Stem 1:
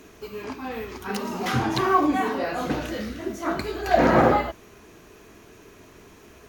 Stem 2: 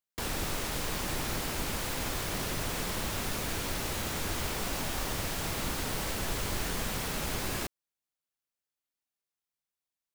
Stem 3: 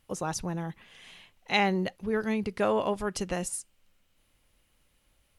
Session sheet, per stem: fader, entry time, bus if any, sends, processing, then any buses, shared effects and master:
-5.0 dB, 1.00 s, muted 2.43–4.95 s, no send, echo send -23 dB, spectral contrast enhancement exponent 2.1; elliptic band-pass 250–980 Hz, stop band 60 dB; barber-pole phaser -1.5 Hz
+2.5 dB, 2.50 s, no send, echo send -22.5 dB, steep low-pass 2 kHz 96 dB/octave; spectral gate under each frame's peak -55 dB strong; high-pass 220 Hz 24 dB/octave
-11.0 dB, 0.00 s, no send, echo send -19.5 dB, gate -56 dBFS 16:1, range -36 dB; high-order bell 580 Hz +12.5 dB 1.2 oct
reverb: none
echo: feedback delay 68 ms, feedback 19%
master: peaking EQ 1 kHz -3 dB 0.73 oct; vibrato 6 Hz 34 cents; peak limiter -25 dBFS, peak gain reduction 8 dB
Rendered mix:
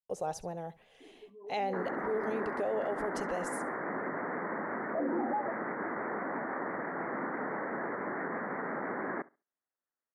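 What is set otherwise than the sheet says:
stem 2: entry 2.50 s -> 1.55 s; master: missing peaking EQ 1 kHz -3 dB 0.73 oct

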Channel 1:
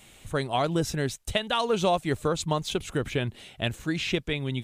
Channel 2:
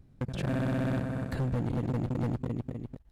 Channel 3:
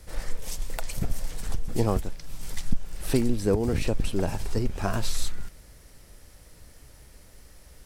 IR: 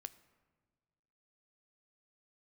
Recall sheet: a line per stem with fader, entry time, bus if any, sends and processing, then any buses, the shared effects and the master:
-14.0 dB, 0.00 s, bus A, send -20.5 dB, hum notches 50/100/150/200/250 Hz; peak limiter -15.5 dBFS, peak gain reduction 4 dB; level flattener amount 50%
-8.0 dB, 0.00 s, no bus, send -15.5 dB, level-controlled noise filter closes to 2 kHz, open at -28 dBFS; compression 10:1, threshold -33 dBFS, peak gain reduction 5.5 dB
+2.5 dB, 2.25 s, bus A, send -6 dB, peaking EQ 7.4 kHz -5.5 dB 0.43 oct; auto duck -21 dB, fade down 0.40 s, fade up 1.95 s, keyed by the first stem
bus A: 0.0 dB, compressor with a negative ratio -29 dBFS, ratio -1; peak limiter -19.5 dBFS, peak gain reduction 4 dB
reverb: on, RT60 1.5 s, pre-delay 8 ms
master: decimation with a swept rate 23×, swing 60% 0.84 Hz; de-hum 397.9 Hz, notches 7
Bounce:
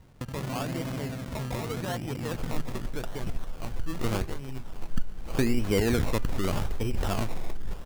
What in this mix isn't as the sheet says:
stem 1: missing level flattener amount 50%; stem 2 -8.0 dB -> 0.0 dB

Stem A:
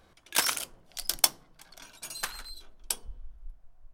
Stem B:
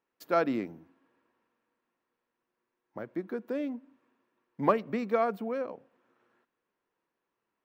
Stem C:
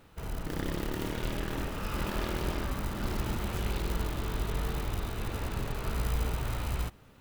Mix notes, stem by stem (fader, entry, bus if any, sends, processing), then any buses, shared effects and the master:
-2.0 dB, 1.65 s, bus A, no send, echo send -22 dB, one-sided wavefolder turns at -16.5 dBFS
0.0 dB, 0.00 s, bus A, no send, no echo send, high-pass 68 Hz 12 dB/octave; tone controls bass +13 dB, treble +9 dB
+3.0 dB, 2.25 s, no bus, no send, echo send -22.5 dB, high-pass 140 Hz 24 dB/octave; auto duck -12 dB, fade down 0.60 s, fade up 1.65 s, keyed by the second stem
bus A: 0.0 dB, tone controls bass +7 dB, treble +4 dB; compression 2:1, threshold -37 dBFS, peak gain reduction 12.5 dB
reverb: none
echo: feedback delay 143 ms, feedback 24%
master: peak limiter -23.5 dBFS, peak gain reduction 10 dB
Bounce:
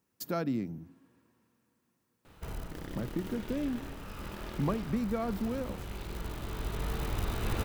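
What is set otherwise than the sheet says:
stem A: muted; stem C: missing high-pass 140 Hz 24 dB/octave; master: missing peak limiter -23.5 dBFS, peak gain reduction 10 dB

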